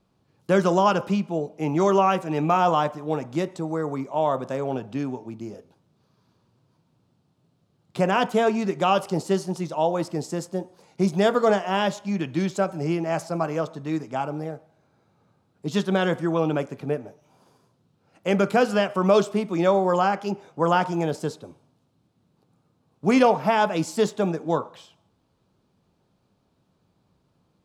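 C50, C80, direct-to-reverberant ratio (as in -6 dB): 18.5 dB, 22.0 dB, 11.5 dB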